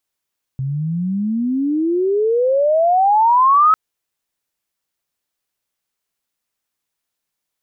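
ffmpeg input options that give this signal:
-f lavfi -i "aevalsrc='pow(10,(-19+11*t/3.15)/20)*sin(2*PI*130*3.15/log(1300/130)*(exp(log(1300/130)*t/3.15)-1))':d=3.15:s=44100"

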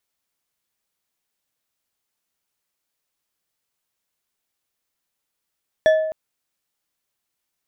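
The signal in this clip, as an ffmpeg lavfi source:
-f lavfi -i "aevalsrc='0.335*pow(10,-3*t/0.96)*sin(2*PI*631*t)+0.112*pow(10,-3*t/0.472)*sin(2*PI*1739.7*t)+0.0376*pow(10,-3*t/0.295)*sin(2*PI*3409.9*t)+0.0126*pow(10,-3*t/0.207)*sin(2*PI*5636.7*t)+0.00422*pow(10,-3*t/0.157)*sin(2*PI*8417.5*t)':d=0.26:s=44100"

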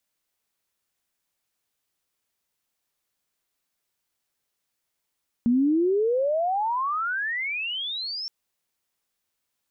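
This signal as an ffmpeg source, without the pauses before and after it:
-f lavfi -i "aevalsrc='pow(10,(-17-12.5*t/2.82)/20)*sin(2*PI*230*2.82/log(5500/230)*(exp(log(5500/230)*t/2.82)-1))':d=2.82:s=44100"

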